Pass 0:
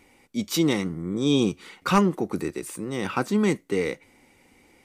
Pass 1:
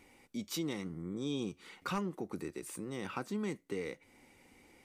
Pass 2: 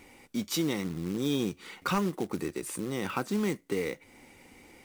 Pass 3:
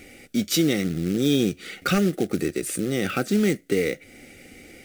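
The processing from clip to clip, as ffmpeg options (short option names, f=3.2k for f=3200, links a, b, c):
-af "acompressor=threshold=-38dB:ratio=2,volume=-4.5dB"
-af "acrusher=bits=4:mode=log:mix=0:aa=0.000001,volume=7.5dB"
-af "asuperstop=centerf=980:order=4:qfactor=1.7,volume=8.5dB"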